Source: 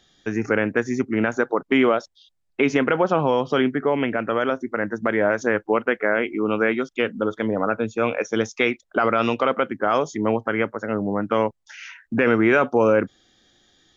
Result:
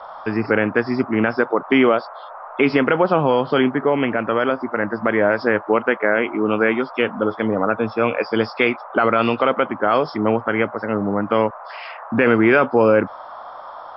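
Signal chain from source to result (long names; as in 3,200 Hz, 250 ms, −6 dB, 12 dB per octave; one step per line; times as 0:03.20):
hearing-aid frequency compression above 3,300 Hz 1.5 to 1
noise in a band 570–1,300 Hz −39 dBFS
level +3 dB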